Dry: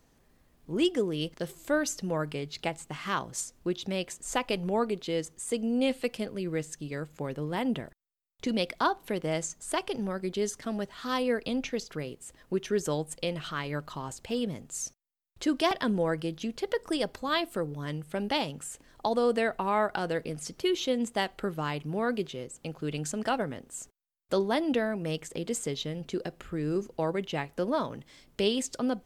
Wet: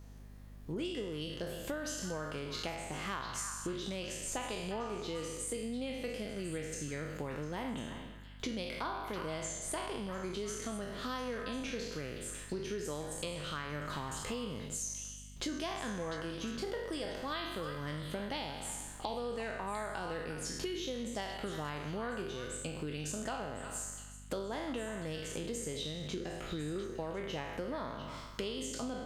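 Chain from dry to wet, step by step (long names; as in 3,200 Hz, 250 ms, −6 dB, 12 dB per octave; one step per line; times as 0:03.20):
peak hold with a decay on every bin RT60 0.83 s
notch filter 7,700 Hz, Q 24
downward compressor 6 to 1, threshold −38 dBFS, peak gain reduction 18 dB
echo through a band-pass that steps 350 ms, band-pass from 1,400 Hz, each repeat 1.4 octaves, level −5.5 dB
mains hum 50 Hz, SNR 12 dB
level +1 dB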